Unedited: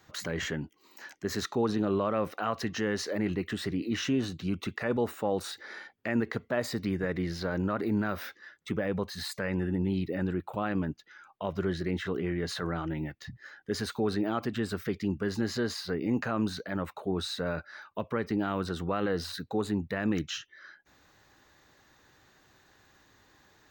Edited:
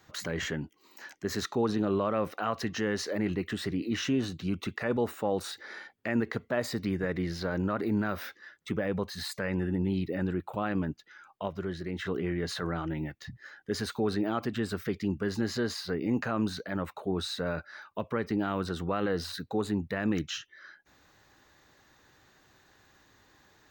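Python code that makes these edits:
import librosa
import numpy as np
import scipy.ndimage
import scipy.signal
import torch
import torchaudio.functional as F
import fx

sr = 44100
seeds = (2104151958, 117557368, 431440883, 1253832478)

y = fx.edit(x, sr, fx.clip_gain(start_s=11.48, length_s=0.51, db=-4.5), tone=tone)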